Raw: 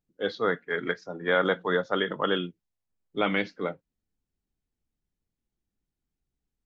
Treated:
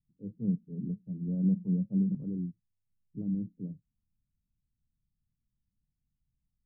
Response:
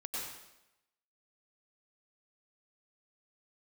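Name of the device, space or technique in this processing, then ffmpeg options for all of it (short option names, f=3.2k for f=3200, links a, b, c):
the neighbour's flat through the wall: -filter_complex "[0:a]lowpass=f=210:w=0.5412,lowpass=f=210:w=1.3066,equalizer=f=120:t=o:w=0.62:g=5,asettb=1/sr,asplit=3[a][b][c];[a]atrim=end=0.394[d];[b]atrim=start=0.39:end=2.15,asetpts=PTS-STARTPTS,afade=t=in:d=0.004:c=qsin,afade=t=out:st=1.756:d=0.004:c=qsin,equalizer=f=200:t=o:w=0.33:g=12,equalizer=f=630:t=o:w=0.33:g=7,equalizer=f=1k:t=o:w=0.33:g=3[e];[c]atrim=start=2.146[f];[d][e]acrossfade=d=0.004:c1=hsin:c2=qsin[g];[g][f]acrossfade=d=0.004:c1=qsin:c2=hsin,volume=2.5dB"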